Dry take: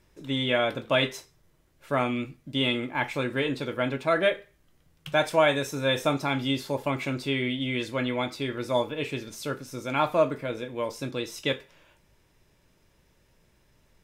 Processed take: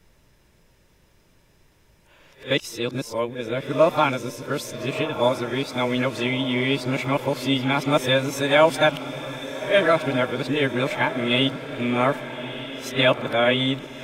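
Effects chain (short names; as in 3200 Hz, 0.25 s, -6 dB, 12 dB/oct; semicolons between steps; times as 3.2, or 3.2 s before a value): whole clip reversed; diffused feedback echo 1.267 s, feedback 53%, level -11.5 dB; gain +5 dB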